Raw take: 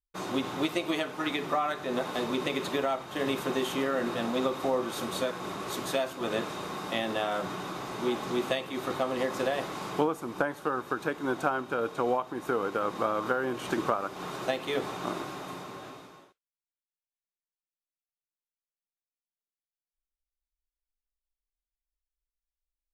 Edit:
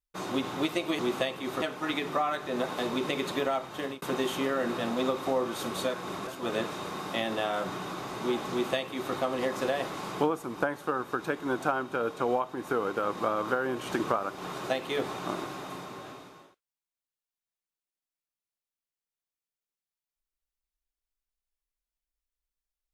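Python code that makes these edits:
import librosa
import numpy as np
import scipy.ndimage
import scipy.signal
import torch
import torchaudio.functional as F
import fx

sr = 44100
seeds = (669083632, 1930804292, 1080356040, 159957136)

y = fx.edit(x, sr, fx.fade_out_span(start_s=3.12, length_s=0.27),
    fx.cut(start_s=5.64, length_s=0.41),
    fx.duplicate(start_s=8.29, length_s=0.63, to_s=0.99), tone=tone)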